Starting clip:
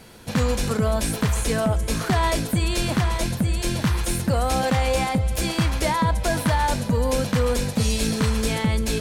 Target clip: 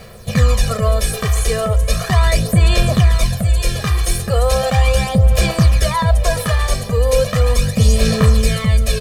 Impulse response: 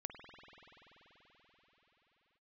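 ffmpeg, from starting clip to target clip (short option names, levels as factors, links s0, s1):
-af "aecho=1:1:1.7:0.88,aphaser=in_gain=1:out_gain=1:delay=2.6:decay=0.5:speed=0.37:type=sinusoidal,acrusher=bits=8:mix=0:aa=0.000001,volume=1.19"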